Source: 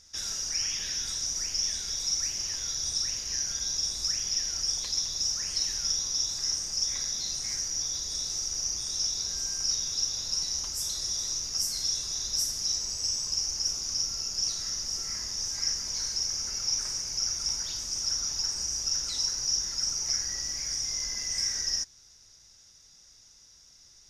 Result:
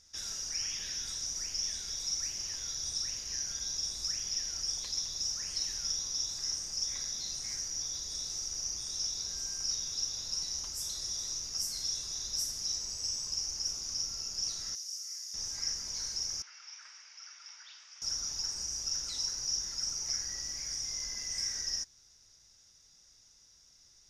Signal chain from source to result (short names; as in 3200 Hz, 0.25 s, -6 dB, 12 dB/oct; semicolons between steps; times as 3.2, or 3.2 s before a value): 14.75–15.34 differentiator; 16.42–18.02 Butterworth band-pass 2000 Hz, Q 0.96; gain -5.5 dB